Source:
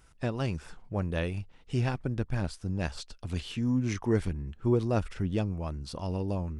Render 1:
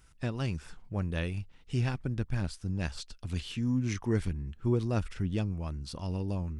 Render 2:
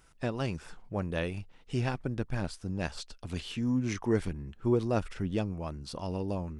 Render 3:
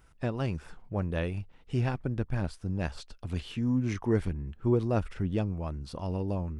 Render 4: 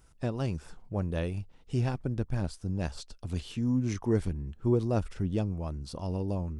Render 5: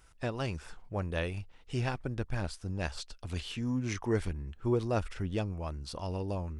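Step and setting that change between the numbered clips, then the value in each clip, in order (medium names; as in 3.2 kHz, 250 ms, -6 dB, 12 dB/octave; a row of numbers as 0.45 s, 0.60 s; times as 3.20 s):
peaking EQ, frequency: 620 Hz, 64 Hz, 6.7 kHz, 2.1 kHz, 180 Hz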